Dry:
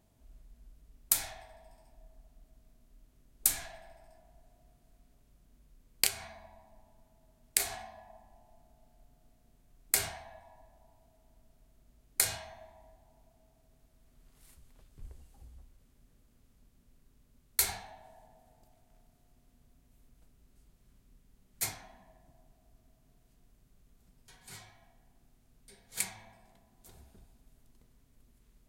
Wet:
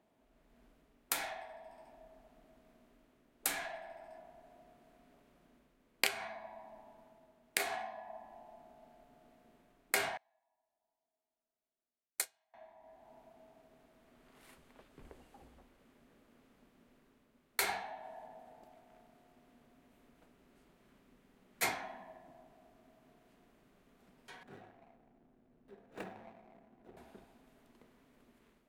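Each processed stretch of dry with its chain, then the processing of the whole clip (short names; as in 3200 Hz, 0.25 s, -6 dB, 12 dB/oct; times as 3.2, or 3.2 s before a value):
10.17–12.54 tone controls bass -8 dB, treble +12 dB + upward expander 2.5:1, over -33 dBFS
24.43–26.97 median filter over 41 samples + notch 4800 Hz, Q 24
whole clip: AGC gain up to 8.5 dB; three-band isolator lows -23 dB, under 210 Hz, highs -15 dB, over 3100 Hz; gain +1 dB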